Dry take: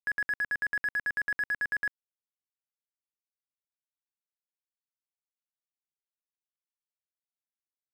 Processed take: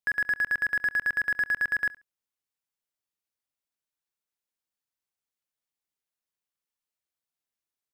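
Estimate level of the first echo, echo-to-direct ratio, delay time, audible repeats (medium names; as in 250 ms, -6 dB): -20.5 dB, -20.5 dB, 69 ms, 2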